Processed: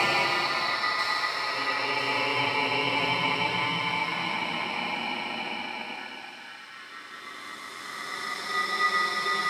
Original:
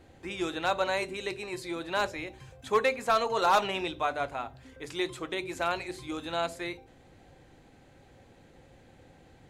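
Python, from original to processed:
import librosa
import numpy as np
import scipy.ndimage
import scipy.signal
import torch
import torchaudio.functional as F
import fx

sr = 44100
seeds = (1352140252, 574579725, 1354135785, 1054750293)

p1 = fx.paulstretch(x, sr, seeds[0], factor=6.8, window_s=0.5, from_s=3.66)
p2 = p1 * np.sin(2.0 * np.pi * 1600.0 * np.arange(len(p1)) / sr)
p3 = scipy.signal.sosfilt(scipy.signal.butter(2, 120.0, 'highpass', fs=sr, output='sos'), p2)
p4 = p3 + fx.echo_wet_highpass(p3, sr, ms=989, feedback_pct=56, hz=5300.0, wet_db=-3.5, dry=0)
y = p4 * 10.0 ** (7.5 / 20.0)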